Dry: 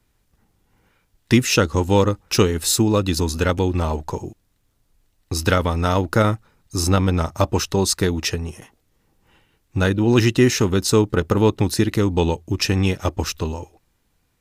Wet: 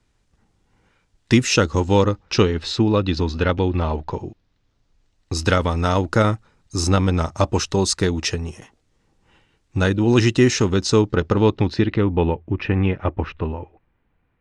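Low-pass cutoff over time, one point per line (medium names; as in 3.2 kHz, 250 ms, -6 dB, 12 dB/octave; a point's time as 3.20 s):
low-pass 24 dB/octave
1.48 s 8.4 kHz
2.72 s 4.3 kHz
4.09 s 4.3 kHz
5.44 s 8.4 kHz
10.38 s 8.4 kHz
11.54 s 5 kHz
12.24 s 2.5 kHz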